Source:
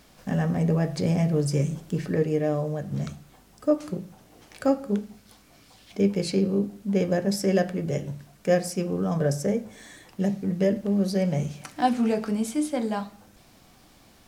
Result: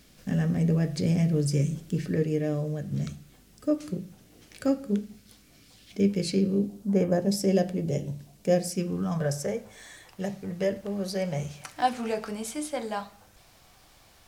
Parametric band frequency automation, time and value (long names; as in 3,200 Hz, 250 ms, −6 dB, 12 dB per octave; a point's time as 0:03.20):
parametric band −11 dB 1.3 octaves
0:06.55 880 Hz
0:07.08 4,700 Hz
0:07.27 1,400 Hz
0:08.57 1,400 Hz
0:09.36 240 Hz